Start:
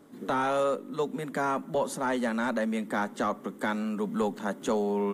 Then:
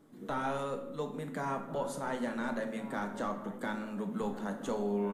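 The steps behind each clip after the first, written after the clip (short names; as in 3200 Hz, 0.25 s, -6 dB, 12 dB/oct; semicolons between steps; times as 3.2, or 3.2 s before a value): low shelf 100 Hz +9.5 dB; outdoor echo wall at 240 m, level -13 dB; shoebox room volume 290 m³, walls mixed, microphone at 0.66 m; gain -8.5 dB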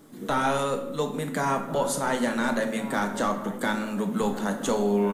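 high shelf 3000 Hz +8.5 dB; gain +9 dB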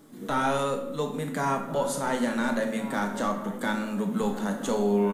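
harmonic-percussive split percussive -5 dB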